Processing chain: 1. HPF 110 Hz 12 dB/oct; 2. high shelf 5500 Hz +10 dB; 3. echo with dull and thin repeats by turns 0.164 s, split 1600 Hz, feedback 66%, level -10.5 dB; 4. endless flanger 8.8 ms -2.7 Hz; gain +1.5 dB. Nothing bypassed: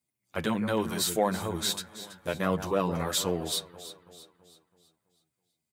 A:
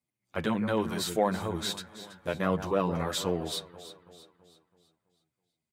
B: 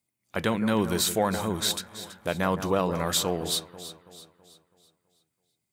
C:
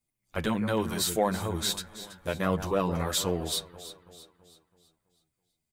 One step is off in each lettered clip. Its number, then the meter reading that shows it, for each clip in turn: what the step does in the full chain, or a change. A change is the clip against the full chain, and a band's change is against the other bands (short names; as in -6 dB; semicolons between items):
2, 8 kHz band -6.5 dB; 4, momentary loudness spread change -2 LU; 1, 125 Hz band +2.0 dB